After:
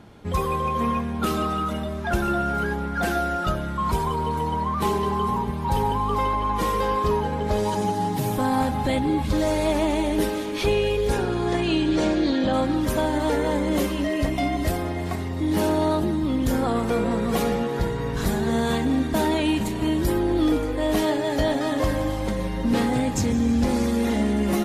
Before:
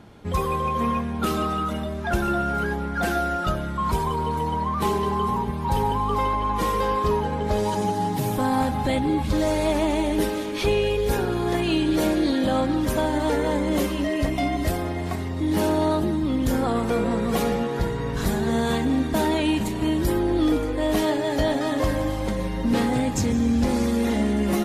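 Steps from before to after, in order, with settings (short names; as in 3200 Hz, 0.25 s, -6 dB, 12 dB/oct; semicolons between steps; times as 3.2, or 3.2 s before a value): 11.07–12.52 LPF 11000 Hz -> 6100 Hz 24 dB/oct; on a send: thinning echo 0.327 s, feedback 72%, level -23.5 dB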